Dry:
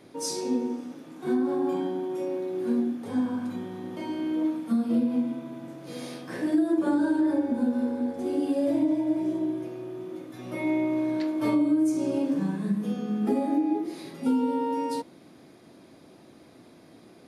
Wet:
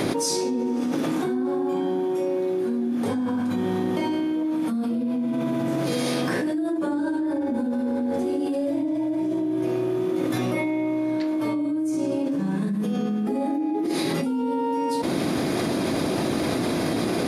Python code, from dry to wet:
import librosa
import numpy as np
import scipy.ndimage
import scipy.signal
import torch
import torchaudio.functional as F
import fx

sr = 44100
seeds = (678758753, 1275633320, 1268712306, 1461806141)

y = fx.env_flatten(x, sr, amount_pct=100)
y = y * 10.0 ** (-5.0 / 20.0)